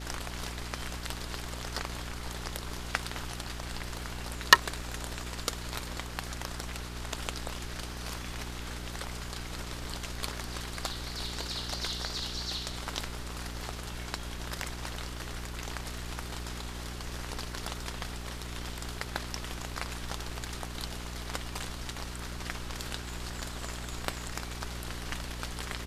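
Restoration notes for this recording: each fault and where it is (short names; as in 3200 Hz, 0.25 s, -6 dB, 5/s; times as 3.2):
hum 60 Hz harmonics 7 -41 dBFS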